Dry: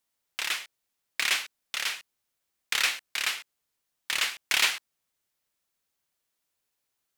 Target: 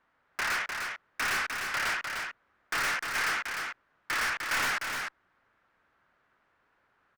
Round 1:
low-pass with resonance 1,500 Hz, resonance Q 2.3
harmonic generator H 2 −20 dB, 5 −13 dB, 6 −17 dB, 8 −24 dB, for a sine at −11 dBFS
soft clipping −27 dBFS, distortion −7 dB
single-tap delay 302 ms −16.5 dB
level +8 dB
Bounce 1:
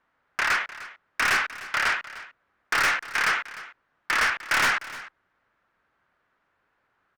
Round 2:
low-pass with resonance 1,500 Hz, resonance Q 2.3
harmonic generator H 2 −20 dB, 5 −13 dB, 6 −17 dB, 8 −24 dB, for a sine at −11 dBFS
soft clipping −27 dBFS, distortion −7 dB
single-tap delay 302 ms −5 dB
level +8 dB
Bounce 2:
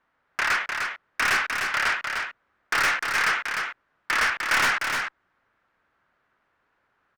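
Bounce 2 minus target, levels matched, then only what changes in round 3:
soft clipping: distortion −4 dB
change: soft clipping −36 dBFS, distortion −3 dB

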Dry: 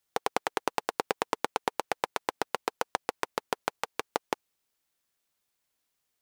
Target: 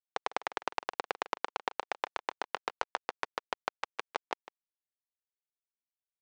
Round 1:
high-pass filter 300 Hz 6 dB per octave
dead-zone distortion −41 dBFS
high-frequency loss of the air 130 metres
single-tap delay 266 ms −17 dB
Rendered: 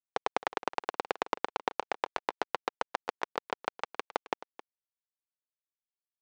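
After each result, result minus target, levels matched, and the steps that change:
echo 114 ms late; 250 Hz band +4.0 dB
change: single-tap delay 152 ms −17 dB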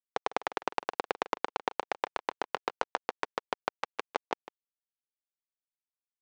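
250 Hz band +4.0 dB
change: high-pass filter 830 Hz 6 dB per octave

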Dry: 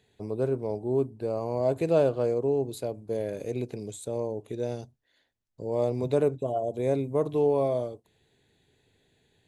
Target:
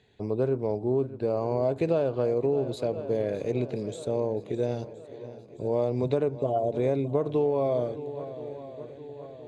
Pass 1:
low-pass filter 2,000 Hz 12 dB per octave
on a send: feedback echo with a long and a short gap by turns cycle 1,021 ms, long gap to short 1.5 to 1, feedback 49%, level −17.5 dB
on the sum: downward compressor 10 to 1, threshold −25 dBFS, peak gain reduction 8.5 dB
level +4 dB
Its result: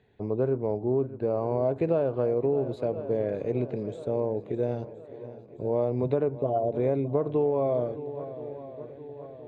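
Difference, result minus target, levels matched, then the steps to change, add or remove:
4,000 Hz band −10.0 dB
change: low-pass filter 4,900 Hz 12 dB per octave

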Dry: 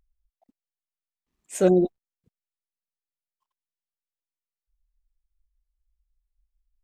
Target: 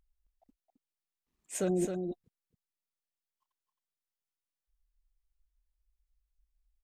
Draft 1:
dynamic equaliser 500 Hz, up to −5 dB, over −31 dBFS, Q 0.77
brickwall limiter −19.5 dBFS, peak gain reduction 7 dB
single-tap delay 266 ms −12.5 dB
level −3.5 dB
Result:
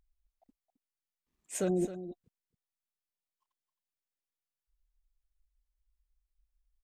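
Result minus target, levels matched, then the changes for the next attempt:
echo-to-direct −6.5 dB
change: single-tap delay 266 ms −6 dB

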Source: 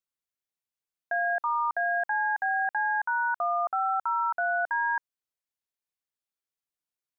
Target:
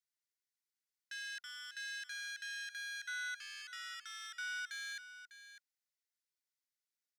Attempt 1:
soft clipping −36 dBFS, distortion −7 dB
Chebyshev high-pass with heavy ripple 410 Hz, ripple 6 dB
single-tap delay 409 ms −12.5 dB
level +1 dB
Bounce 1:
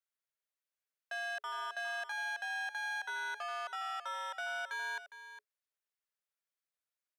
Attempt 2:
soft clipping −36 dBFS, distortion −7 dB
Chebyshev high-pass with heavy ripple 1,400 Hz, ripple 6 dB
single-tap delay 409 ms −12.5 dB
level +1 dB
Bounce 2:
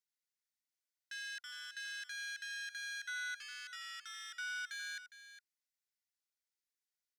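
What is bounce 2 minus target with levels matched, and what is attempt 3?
echo 191 ms early
soft clipping −36 dBFS, distortion −7 dB
Chebyshev high-pass with heavy ripple 1,400 Hz, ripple 6 dB
single-tap delay 600 ms −12.5 dB
level +1 dB

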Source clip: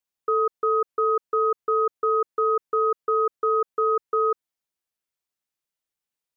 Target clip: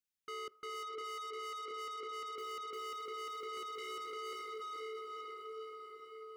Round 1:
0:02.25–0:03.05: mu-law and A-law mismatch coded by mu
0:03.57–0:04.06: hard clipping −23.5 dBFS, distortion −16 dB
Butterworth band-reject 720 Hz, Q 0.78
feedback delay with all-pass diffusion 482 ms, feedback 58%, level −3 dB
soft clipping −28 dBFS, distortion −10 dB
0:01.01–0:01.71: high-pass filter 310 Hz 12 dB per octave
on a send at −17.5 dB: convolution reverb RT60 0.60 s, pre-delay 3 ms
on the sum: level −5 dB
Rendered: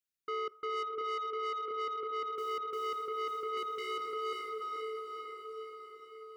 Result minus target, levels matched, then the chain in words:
soft clipping: distortion −6 dB
0:02.25–0:03.05: mu-law and A-law mismatch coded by mu
0:03.57–0:04.06: hard clipping −23.5 dBFS, distortion −16 dB
Butterworth band-reject 720 Hz, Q 0.78
feedback delay with all-pass diffusion 482 ms, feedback 58%, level −3 dB
soft clipping −37.5 dBFS, distortion −4 dB
0:01.01–0:01.71: high-pass filter 310 Hz 12 dB per octave
on a send at −17.5 dB: convolution reverb RT60 0.60 s, pre-delay 3 ms
on the sum: level −5 dB

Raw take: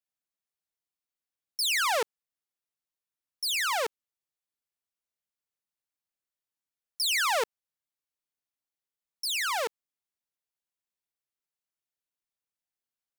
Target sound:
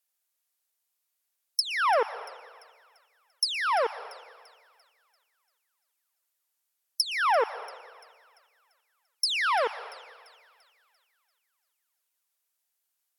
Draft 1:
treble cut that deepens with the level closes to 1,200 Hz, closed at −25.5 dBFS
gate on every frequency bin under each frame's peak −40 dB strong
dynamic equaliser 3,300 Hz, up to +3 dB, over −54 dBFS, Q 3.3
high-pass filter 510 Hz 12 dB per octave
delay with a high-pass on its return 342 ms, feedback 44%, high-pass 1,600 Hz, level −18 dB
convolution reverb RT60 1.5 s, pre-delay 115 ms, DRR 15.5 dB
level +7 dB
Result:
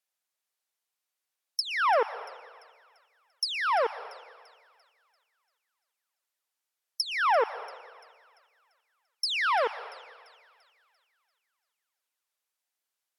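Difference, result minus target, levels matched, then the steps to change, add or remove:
8,000 Hz band −6.0 dB
add after high-pass filter: high-shelf EQ 8,200 Hz +11.5 dB

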